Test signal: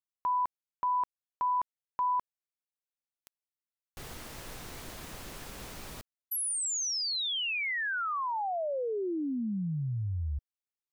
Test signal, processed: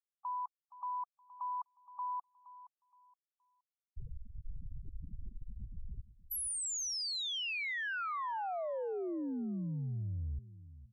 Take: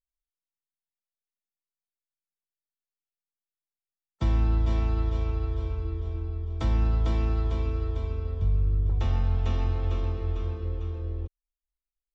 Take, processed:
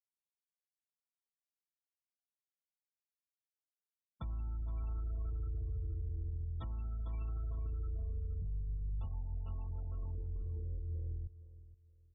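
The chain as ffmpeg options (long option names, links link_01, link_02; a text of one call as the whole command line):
ffmpeg -i in.wav -filter_complex "[0:a]afftfilt=real='re*gte(hypot(re,im),0.0282)':imag='im*gte(hypot(re,im),0.0282)':win_size=1024:overlap=0.75,equalizer=frequency=380:width=0.61:gain=-12.5,acompressor=threshold=-34dB:ratio=6:release=255,alimiter=level_in=18.5dB:limit=-24dB:level=0:latency=1:release=36,volume=-18.5dB,asplit=2[link_01][link_02];[link_02]adelay=470,lowpass=frequency=2800:poles=1,volume=-15.5dB,asplit=2[link_03][link_04];[link_04]adelay=470,lowpass=frequency=2800:poles=1,volume=0.28,asplit=2[link_05][link_06];[link_06]adelay=470,lowpass=frequency=2800:poles=1,volume=0.28[link_07];[link_01][link_03][link_05][link_07]amix=inputs=4:normalize=0,volume=8dB" out.wav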